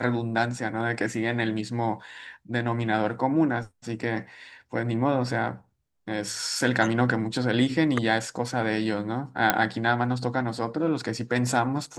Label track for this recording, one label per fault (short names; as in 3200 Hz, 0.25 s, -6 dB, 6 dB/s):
9.500000	9.500000	pop -3 dBFS